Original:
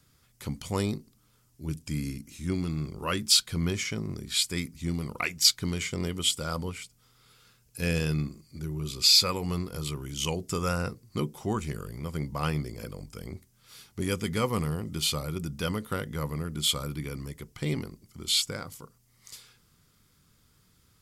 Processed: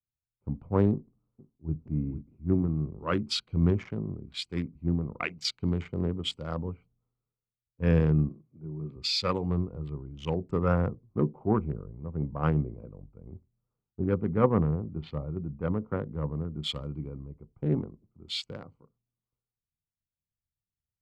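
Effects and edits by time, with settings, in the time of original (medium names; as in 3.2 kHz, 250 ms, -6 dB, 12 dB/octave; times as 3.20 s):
0.91–1.75 s: echo throw 470 ms, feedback 55%, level -8.5 dB
8.29–8.96 s: high-pass 100 Hz 24 dB/octave
13.23–16.03 s: distance through air 170 m
whole clip: local Wiener filter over 25 samples; low-pass 1.5 kHz 12 dB/octave; three bands expanded up and down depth 100%; trim +2 dB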